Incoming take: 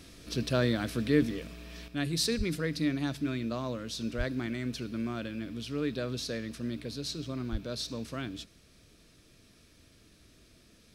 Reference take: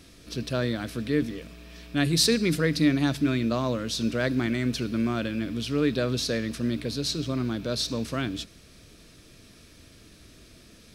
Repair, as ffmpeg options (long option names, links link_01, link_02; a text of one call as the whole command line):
ffmpeg -i in.wav -filter_complex "[0:a]asplit=3[link_01][link_02][link_03];[link_01]afade=type=out:start_time=2.37:duration=0.02[link_04];[link_02]highpass=frequency=140:width=0.5412,highpass=frequency=140:width=1.3066,afade=type=in:start_time=2.37:duration=0.02,afade=type=out:start_time=2.49:duration=0.02[link_05];[link_03]afade=type=in:start_time=2.49:duration=0.02[link_06];[link_04][link_05][link_06]amix=inputs=3:normalize=0,asplit=3[link_07][link_08][link_09];[link_07]afade=type=out:start_time=4.17:duration=0.02[link_10];[link_08]highpass=frequency=140:width=0.5412,highpass=frequency=140:width=1.3066,afade=type=in:start_time=4.17:duration=0.02,afade=type=out:start_time=4.29:duration=0.02[link_11];[link_09]afade=type=in:start_time=4.29:duration=0.02[link_12];[link_10][link_11][link_12]amix=inputs=3:normalize=0,asplit=3[link_13][link_14][link_15];[link_13]afade=type=out:start_time=7.51:duration=0.02[link_16];[link_14]highpass=frequency=140:width=0.5412,highpass=frequency=140:width=1.3066,afade=type=in:start_time=7.51:duration=0.02,afade=type=out:start_time=7.63:duration=0.02[link_17];[link_15]afade=type=in:start_time=7.63:duration=0.02[link_18];[link_16][link_17][link_18]amix=inputs=3:normalize=0,asetnsamples=nb_out_samples=441:pad=0,asendcmd='1.88 volume volume 8dB',volume=0dB" out.wav